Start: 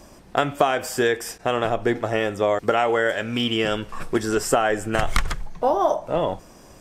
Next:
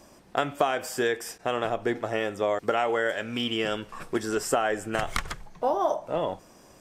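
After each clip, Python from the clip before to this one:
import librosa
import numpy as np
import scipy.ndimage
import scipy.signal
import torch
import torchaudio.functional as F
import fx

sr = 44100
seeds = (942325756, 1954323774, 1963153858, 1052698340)

y = fx.low_shelf(x, sr, hz=90.0, db=-10.0)
y = y * librosa.db_to_amplitude(-5.0)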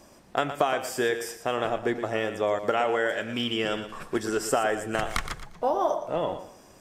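y = fx.echo_feedback(x, sr, ms=117, feedback_pct=27, wet_db=-11)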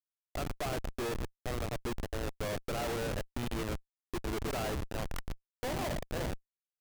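y = fx.schmitt(x, sr, flips_db=-25.5)
y = y * librosa.db_to_amplitude(-6.0)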